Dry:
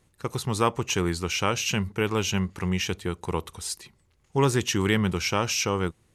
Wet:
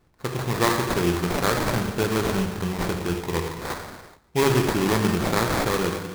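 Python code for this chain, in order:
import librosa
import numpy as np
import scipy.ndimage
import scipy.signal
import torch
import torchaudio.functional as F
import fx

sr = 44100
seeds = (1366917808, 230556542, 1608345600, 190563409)

y = fx.rev_gated(x, sr, seeds[0], gate_ms=460, shape='falling', drr_db=1.5)
y = fx.sample_hold(y, sr, seeds[1], rate_hz=2900.0, jitter_pct=20)
y = y * 10.0 ** (1.0 / 20.0)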